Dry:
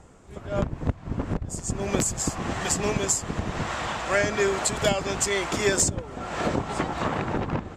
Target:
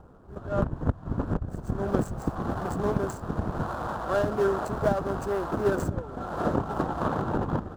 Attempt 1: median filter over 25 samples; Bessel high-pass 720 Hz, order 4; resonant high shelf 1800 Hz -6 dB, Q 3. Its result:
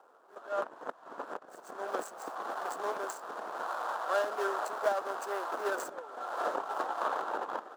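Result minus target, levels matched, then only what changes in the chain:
1000 Hz band +5.0 dB
remove: Bessel high-pass 720 Hz, order 4

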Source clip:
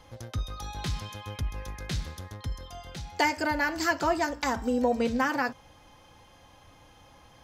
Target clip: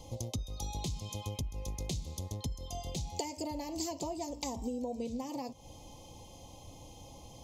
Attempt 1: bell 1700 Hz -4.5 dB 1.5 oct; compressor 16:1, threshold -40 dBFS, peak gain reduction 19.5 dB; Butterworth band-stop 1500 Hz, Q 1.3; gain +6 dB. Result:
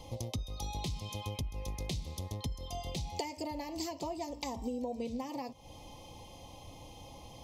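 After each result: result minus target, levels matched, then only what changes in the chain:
2000 Hz band +4.5 dB; 8000 Hz band -4.0 dB
change: bell 1700 Hz -12 dB 1.5 oct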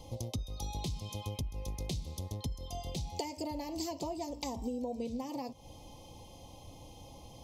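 8000 Hz band -3.5 dB
add after Butterworth band-stop: bell 6900 Hz +7 dB 0.31 oct

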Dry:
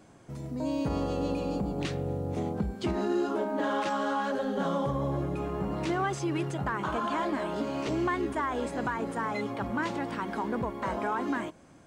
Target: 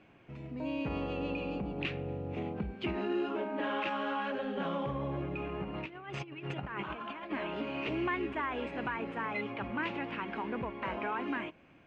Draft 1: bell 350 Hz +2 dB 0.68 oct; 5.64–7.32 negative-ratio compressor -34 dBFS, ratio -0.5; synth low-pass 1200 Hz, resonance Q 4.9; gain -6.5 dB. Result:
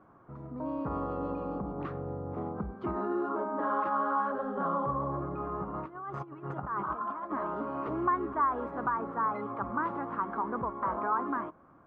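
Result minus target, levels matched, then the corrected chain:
2000 Hz band -7.0 dB
bell 350 Hz +2 dB 0.68 oct; 5.64–7.32 negative-ratio compressor -34 dBFS, ratio -0.5; synth low-pass 2600 Hz, resonance Q 4.9; gain -6.5 dB

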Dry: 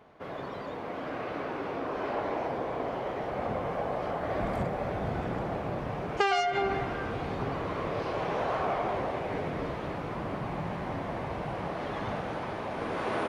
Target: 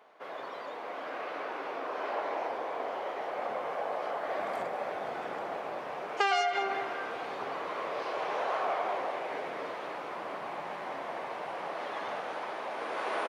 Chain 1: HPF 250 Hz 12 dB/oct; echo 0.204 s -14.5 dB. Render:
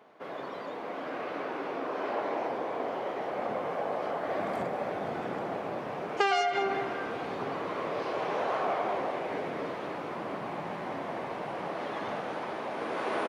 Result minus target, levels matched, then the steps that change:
250 Hz band +7.0 dB
change: HPF 530 Hz 12 dB/oct

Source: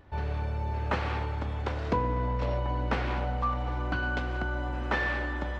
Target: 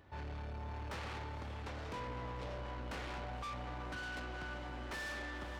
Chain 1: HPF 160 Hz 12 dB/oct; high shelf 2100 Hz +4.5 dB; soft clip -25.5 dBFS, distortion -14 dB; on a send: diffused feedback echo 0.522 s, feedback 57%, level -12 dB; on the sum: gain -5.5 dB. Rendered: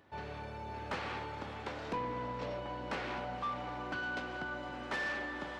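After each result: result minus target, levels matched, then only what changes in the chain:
125 Hz band -6.5 dB; soft clip: distortion -7 dB
change: HPF 66 Hz 12 dB/oct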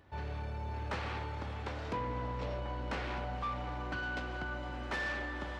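soft clip: distortion -7 dB
change: soft clip -35.5 dBFS, distortion -7 dB

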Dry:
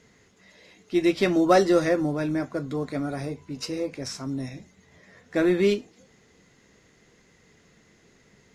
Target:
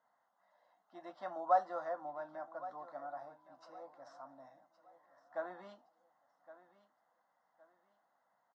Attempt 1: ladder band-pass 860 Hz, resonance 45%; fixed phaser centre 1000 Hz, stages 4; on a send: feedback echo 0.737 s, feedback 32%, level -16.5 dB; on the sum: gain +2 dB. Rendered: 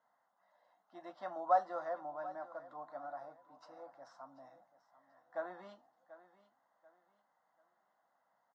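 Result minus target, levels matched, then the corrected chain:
echo 0.378 s early
ladder band-pass 860 Hz, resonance 45%; fixed phaser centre 1000 Hz, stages 4; on a send: feedback echo 1.115 s, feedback 32%, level -16.5 dB; on the sum: gain +2 dB

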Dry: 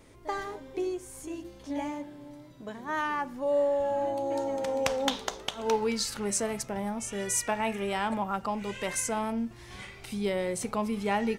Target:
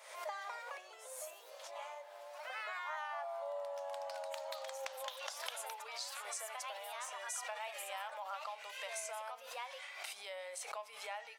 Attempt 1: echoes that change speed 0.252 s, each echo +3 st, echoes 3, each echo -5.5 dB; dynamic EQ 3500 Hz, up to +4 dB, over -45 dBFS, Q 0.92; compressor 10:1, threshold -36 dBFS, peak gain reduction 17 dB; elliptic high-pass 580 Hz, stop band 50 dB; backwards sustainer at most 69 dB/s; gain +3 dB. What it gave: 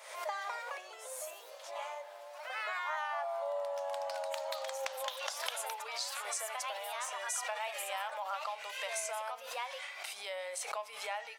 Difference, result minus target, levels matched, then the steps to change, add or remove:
compressor: peak gain reduction -5.5 dB
change: compressor 10:1, threshold -42 dBFS, peak gain reduction 22.5 dB

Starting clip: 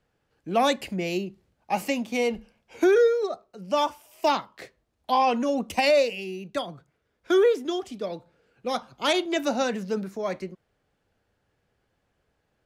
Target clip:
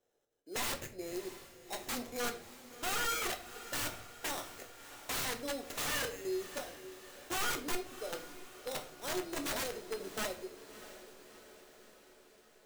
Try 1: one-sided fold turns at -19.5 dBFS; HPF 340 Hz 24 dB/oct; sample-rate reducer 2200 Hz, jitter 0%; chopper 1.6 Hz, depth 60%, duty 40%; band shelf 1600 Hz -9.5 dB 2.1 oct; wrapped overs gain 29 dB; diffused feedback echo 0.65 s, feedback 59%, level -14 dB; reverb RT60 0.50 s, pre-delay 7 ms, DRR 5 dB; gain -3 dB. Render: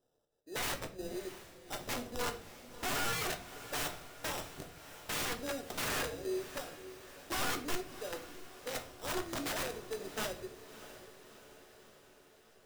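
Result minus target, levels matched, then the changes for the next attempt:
sample-rate reducer: distortion +7 dB
change: sample-rate reducer 4600 Hz, jitter 0%

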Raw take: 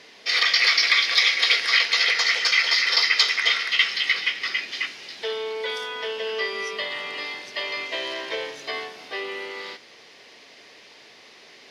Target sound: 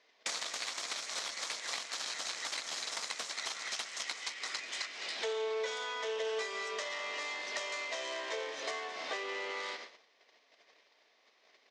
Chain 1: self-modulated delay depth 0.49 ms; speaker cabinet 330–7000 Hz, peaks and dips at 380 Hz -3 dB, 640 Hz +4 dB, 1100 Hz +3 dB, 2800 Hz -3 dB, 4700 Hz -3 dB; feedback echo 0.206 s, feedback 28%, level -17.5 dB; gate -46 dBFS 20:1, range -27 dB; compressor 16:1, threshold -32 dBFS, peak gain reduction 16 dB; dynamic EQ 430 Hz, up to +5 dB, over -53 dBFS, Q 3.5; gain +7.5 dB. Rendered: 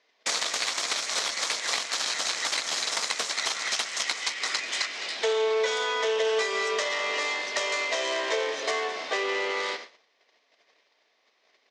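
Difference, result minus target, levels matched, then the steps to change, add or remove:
compressor: peak gain reduction -10.5 dB
change: compressor 16:1, threshold -43 dBFS, peak gain reduction 26 dB

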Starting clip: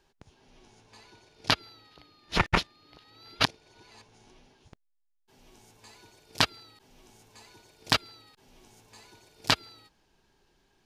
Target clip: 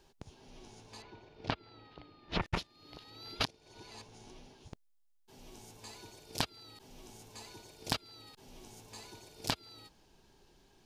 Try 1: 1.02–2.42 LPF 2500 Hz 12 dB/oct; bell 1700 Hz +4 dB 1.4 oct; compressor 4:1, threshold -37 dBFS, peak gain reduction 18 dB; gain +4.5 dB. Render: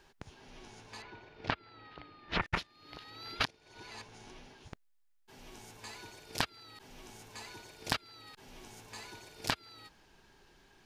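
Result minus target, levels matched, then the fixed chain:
2000 Hz band +4.5 dB
1.02–2.42 LPF 2500 Hz 12 dB/oct; bell 1700 Hz -5.5 dB 1.4 oct; compressor 4:1, threshold -37 dBFS, peak gain reduction 15 dB; gain +4.5 dB

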